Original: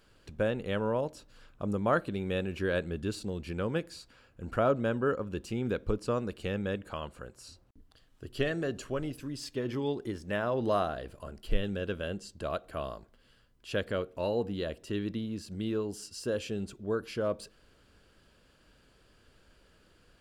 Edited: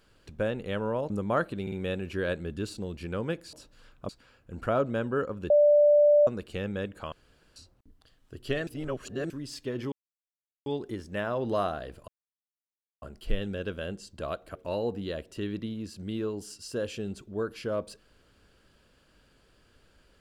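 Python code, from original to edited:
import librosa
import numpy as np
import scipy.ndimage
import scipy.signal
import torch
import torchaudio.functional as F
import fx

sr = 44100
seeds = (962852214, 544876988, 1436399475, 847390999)

y = fx.edit(x, sr, fx.move(start_s=1.1, length_s=0.56, to_s=3.99),
    fx.stutter(start_s=2.18, slice_s=0.05, count=3),
    fx.bleep(start_s=5.4, length_s=0.77, hz=589.0, db=-16.0),
    fx.room_tone_fill(start_s=7.02, length_s=0.44),
    fx.reverse_span(start_s=8.57, length_s=0.63),
    fx.insert_silence(at_s=9.82, length_s=0.74),
    fx.insert_silence(at_s=11.24, length_s=0.94),
    fx.cut(start_s=12.77, length_s=1.3), tone=tone)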